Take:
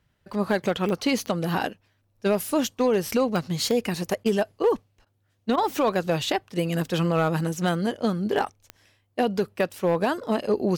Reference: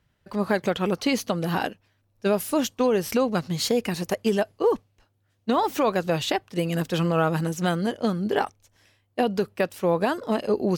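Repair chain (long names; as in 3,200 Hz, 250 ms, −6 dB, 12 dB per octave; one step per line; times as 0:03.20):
clipped peaks rebuilt −14.5 dBFS
click removal
repair the gap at 0:04.24/0:05.05/0:05.56, 14 ms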